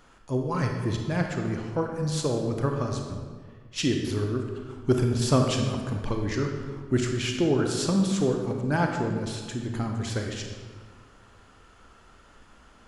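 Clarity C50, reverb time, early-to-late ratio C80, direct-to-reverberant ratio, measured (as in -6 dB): 3.5 dB, 1.7 s, 5.5 dB, 2.5 dB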